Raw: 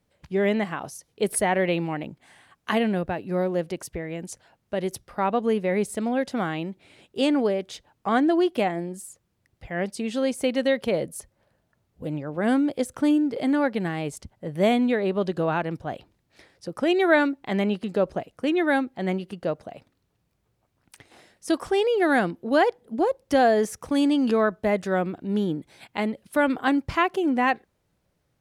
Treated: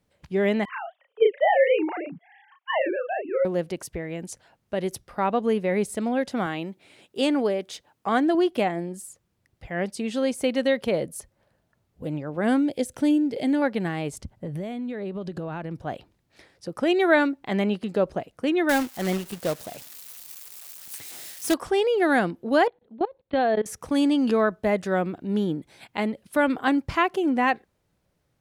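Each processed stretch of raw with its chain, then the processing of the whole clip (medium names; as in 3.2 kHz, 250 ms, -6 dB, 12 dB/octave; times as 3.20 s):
0.65–3.45 s: formants replaced by sine waves + doubling 35 ms -3 dB
6.46–8.35 s: high-pass 170 Hz 6 dB/octave + treble shelf 8.7 kHz +4.5 dB
12.62–13.62 s: peaking EQ 1.2 kHz -13 dB 0.59 oct + tape noise reduction on one side only encoder only
14.13–15.80 s: bass shelf 270 Hz +8.5 dB + compression 20:1, threshold -28 dBFS
18.69–21.54 s: zero-crossing glitches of -29 dBFS + companded quantiser 4-bit
22.67–23.66 s: Chebyshev low-pass 4.3 kHz, order 8 + level held to a coarse grid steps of 21 dB
whole clip: none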